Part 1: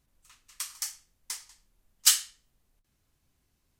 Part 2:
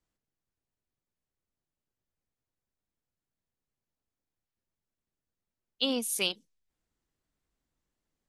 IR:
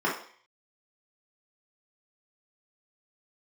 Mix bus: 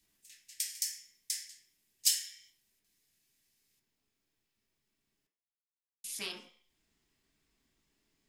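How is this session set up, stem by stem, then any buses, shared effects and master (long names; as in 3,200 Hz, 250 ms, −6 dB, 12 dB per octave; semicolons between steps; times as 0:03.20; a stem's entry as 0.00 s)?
−4.5 dB, 0.00 s, send −10.5 dB, Butterworth high-pass 1,700 Hz 72 dB per octave; high-shelf EQ 3,400 Hz +10.5 dB
−18.0 dB, 0.00 s, muted 0:05.27–0:06.04, send −9 dB, high shelf with overshoot 1,800 Hz +8 dB, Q 1.5; every bin compressed towards the loudest bin 2 to 1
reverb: on, RT60 0.50 s, pre-delay 3 ms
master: downward compressor 2 to 1, threshold −33 dBFS, peak gain reduction 11.5 dB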